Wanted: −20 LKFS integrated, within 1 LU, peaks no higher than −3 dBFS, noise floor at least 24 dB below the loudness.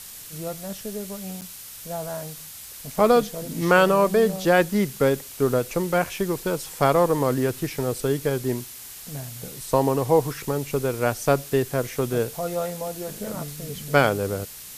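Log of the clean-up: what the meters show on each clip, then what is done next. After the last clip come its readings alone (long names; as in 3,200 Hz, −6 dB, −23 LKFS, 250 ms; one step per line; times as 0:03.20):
number of dropouts 1; longest dropout 8.0 ms; background noise floor −41 dBFS; target noise floor −48 dBFS; integrated loudness −23.5 LKFS; sample peak −2.5 dBFS; target loudness −20.0 LKFS
→ repair the gap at 0:01.41, 8 ms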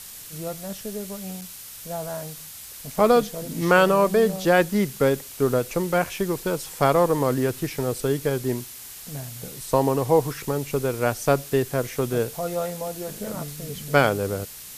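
number of dropouts 0; background noise floor −41 dBFS; target noise floor −48 dBFS
→ broadband denoise 7 dB, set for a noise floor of −41 dBFS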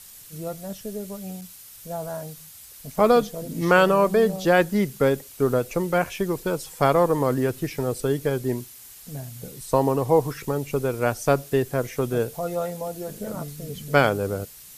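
background noise floor −45 dBFS; target noise floor −48 dBFS
→ broadband denoise 6 dB, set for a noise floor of −45 dBFS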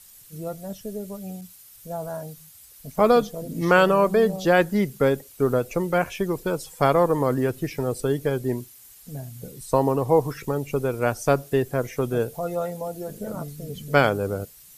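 background noise floor −49 dBFS; integrated loudness −23.5 LKFS; sample peak −2.5 dBFS; target loudness −20.0 LKFS
→ level +3.5 dB
brickwall limiter −3 dBFS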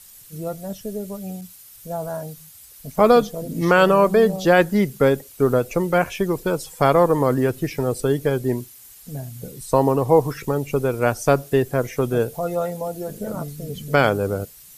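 integrated loudness −20.5 LKFS; sample peak −3.0 dBFS; background noise floor −45 dBFS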